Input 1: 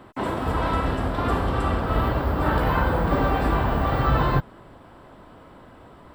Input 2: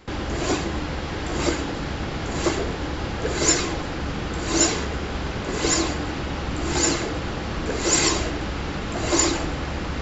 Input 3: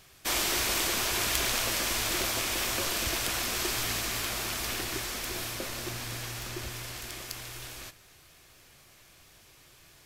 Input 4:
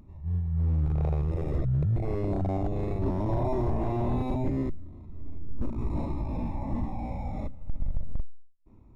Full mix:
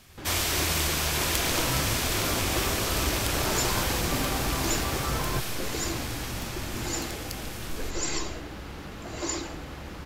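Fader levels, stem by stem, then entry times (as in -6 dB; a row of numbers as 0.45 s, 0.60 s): -10.0 dB, -11.5 dB, +1.0 dB, -8.5 dB; 1.00 s, 0.10 s, 0.00 s, 0.00 s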